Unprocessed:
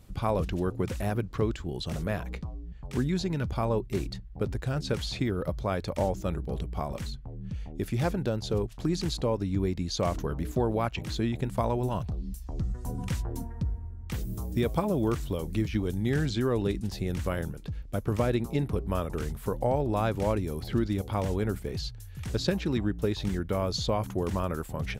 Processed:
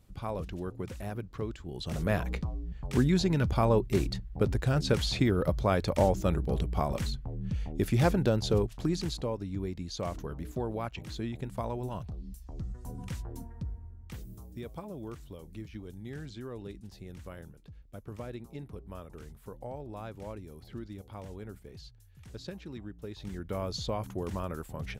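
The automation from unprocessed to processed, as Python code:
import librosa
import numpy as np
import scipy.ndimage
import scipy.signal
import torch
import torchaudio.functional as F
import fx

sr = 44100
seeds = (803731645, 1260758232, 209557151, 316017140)

y = fx.gain(x, sr, db=fx.line((1.61, -8.0), (2.14, 3.0), (8.46, 3.0), (9.42, -7.0), (13.95, -7.0), (14.55, -14.5), (23.03, -14.5), (23.56, -5.5)))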